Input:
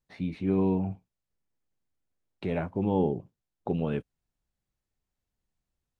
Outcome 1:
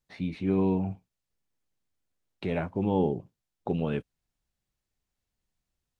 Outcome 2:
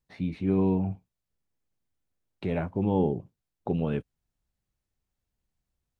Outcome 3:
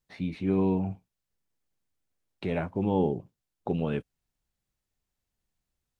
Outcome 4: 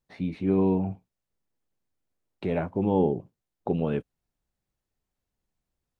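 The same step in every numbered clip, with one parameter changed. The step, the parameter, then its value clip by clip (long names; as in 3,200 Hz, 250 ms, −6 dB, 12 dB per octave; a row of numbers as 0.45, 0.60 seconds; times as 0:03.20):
parametric band, centre frequency: 4,500, 64, 16,000, 480 Hertz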